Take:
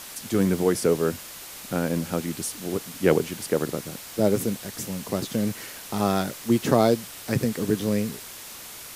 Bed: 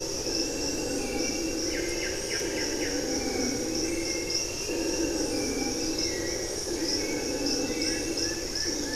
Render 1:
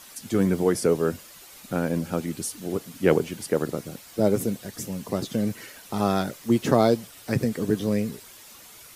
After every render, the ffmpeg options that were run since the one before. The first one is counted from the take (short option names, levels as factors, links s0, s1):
-af "afftdn=nr=9:nf=-41"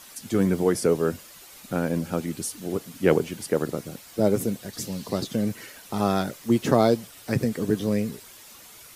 -filter_complex "[0:a]asettb=1/sr,asplit=3[s0][s1][s2];[s0]atrim=end=4.734[s3];[s1]atrim=start=4.73:end=5.24,asetpts=PTS-STARTPTS,afade=t=in:d=0.004:c=qsin,afade=t=out:st=0.506:d=0.004:c=qsin,equalizer=f=4300:w=2:g=8.5[s4];[s2]atrim=start=5.236[s5];[s3][s4]acrossfade=d=0.004:c1=hsin:c2=qsin[s6];[s6][s5]acrossfade=d=0.004:c1=qsin:c2=hsin"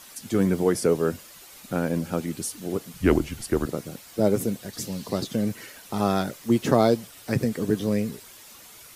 -filter_complex "[0:a]asettb=1/sr,asplit=3[s0][s1][s2];[s0]atrim=end=2.934[s3];[s1]atrim=start=2.93:end=3.66,asetpts=PTS-STARTPTS,afade=t=in:d=0.004:c=qsin,afade=t=out:st=0.726:d=0.004:c=qsin,afreqshift=-99[s4];[s2]atrim=start=3.656[s5];[s3][s4]acrossfade=d=0.004:c1=hsin:c2=qsin[s6];[s6][s5]acrossfade=d=0.004:c1=qsin:c2=hsin"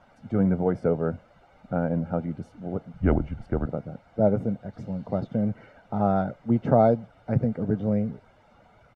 -af "lowpass=1000,aecho=1:1:1.4:0.57"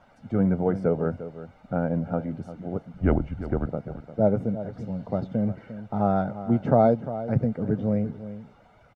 -filter_complex "[0:a]asplit=2[s0][s1];[s1]adelay=349.9,volume=0.224,highshelf=f=4000:g=-7.87[s2];[s0][s2]amix=inputs=2:normalize=0"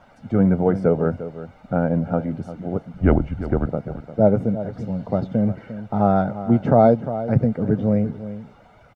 -af "volume=1.88,alimiter=limit=0.708:level=0:latency=1"